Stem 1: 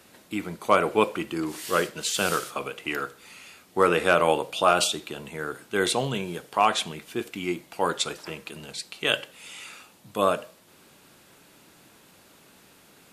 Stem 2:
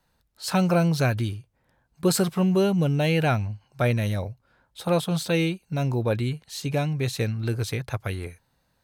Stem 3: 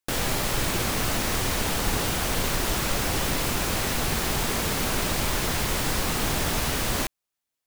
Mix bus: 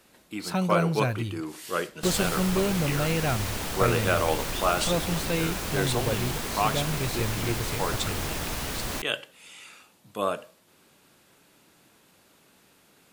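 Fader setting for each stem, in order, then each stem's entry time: -5.0 dB, -5.0 dB, -6.0 dB; 0.00 s, 0.00 s, 1.95 s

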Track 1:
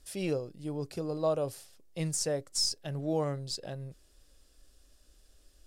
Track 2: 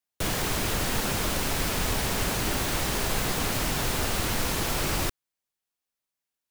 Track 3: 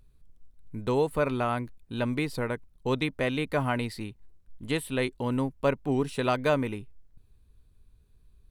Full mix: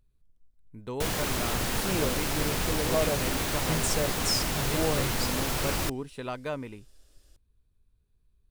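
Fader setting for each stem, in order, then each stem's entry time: +1.0 dB, -2.0 dB, -9.0 dB; 1.70 s, 0.80 s, 0.00 s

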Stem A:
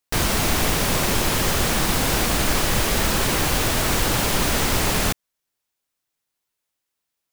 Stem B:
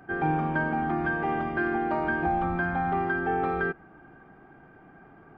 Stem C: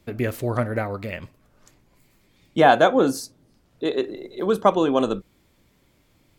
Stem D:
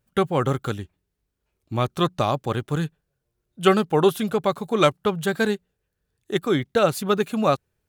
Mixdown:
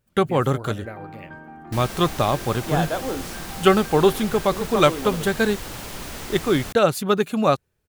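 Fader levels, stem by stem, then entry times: -13.5 dB, -14.0 dB, -10.5 dB, +1.5 dB; 1.60 s, 0.75 s, 0.10 s, 0.00 s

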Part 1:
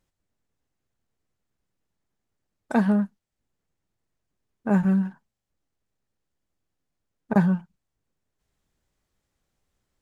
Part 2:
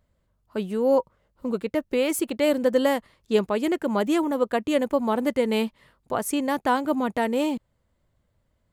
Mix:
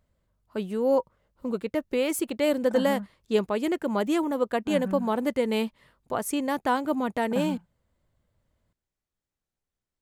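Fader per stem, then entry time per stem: -12.5 dB, -2.5 dB; 0.00 s, 0.00 s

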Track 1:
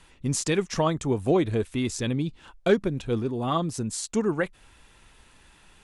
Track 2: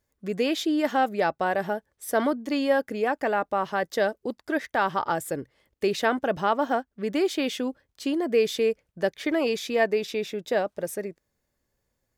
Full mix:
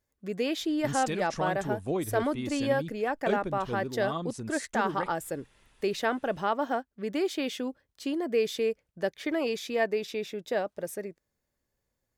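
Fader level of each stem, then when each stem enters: -8.5 dB, -4.5 dB; 0.60 s, 0.00 s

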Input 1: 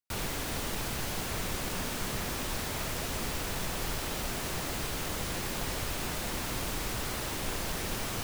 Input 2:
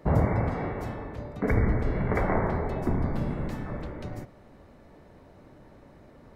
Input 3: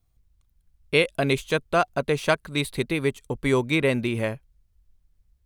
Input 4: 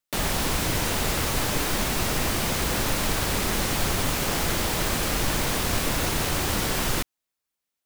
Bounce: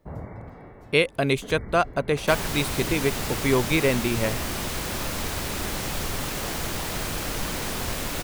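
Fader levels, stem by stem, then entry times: -1.0 dB, -13.5 dB, 0.0 dB, -5.5 dB; 2.20 s, 0.00 s, 0.00 s, 2.15 s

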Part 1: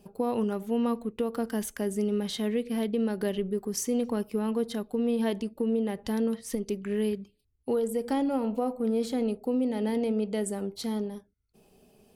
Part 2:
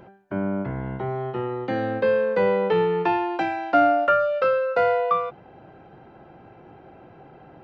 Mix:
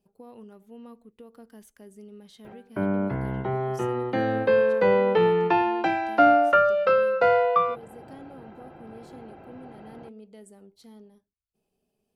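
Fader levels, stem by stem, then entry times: -18.0 dB, +0.5 dB; 0.00 s, 2.45 s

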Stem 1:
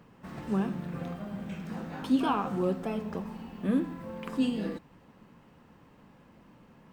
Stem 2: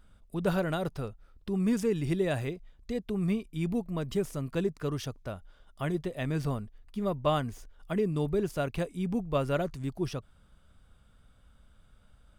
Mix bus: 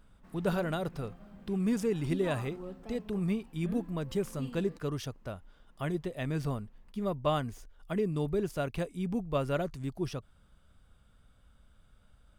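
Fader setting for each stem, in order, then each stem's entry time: -14.5 dB, -2.0 dB; 0.00 s, 0.00 s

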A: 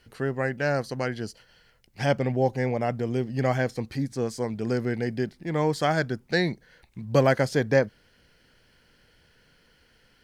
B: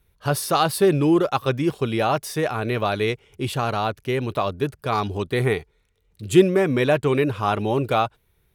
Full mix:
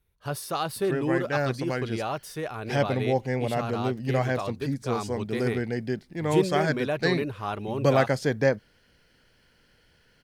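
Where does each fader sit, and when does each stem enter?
-1.5 dB, -9.5 dB; 0.70 s, 0.00 s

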